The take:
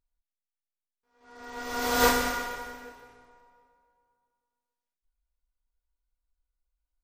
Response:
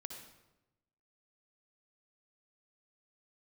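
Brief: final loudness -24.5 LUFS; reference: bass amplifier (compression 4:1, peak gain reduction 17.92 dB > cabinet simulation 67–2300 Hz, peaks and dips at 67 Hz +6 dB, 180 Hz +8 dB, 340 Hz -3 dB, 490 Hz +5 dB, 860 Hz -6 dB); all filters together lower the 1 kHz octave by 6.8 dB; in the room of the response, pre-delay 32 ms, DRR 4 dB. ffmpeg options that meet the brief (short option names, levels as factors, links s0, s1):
-filter_complex "[0:a]equalizer=f=1000:t=o:g=-7,asplit=2[s0][s1];[1:a]atrim=start_sample=2205,adelay=32[s2];[s1][s2]afir=irnorm=-1:irlink=0,volume=0.944[s3];[s0][s3]amix=inputs=2:normalize=0,acompressor=threshold=0.0112:ratio=4,highpass=f=67:w=0.5412,highpass=f=67:w=1.3066,equalizer=f=67:t=q:w=4:g=6,equalizer=f=180:t=q:w=4:g=8,equalizer=f=340:t=q:w=4:g=-3,equalizer=f=490:t=q:w=4:g=5,equalizer=f=860:t=q:w=4:g=-6,lowpass=f=2300:w=0.5412,lowpass=f=2300:w=1.3066,volume=7.08"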